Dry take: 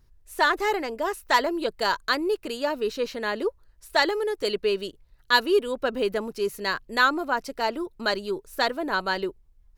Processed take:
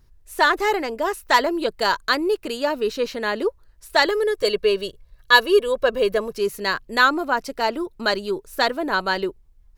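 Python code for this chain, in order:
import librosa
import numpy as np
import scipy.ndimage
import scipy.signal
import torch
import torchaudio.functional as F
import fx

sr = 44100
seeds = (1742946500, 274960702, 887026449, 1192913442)

y = fx.comb(x, sr, ms=1.8, depth=0.62, at=(4.06, 6.37))
y = F.gain(torch.from_numpy(y), 4.0).numpy()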